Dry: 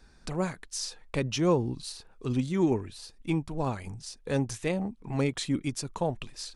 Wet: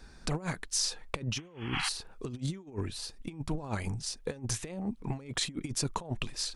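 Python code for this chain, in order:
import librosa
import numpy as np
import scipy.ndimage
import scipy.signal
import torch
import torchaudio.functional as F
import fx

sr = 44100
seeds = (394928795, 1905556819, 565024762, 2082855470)

y = fx.spec_paint(x, sr, seeds[0], shape='noise', start_s=1.38, length_s=0.51, low_hz=730.0, high_hz=3400.0, level_db=-39.0)
y = fx.over_compress(y, sr, threshold_db=-34.0, ratio=-0.5)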